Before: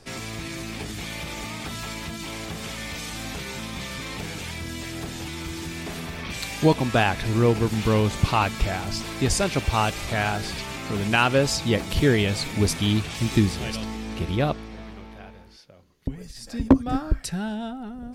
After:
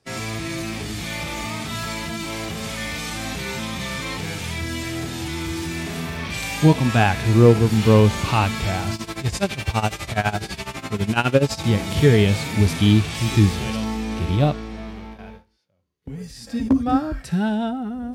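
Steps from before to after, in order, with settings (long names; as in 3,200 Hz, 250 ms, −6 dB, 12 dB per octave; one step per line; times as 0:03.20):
high-pass filter 48 Hz 24 dB per octave
noise gate with hold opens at −33 dBFS
harmonic and percussive parts rebalanced percussive −16 dB
0:08.94–0:11.64: amplitude tremolo 12 Hz, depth 86%
level +8 dB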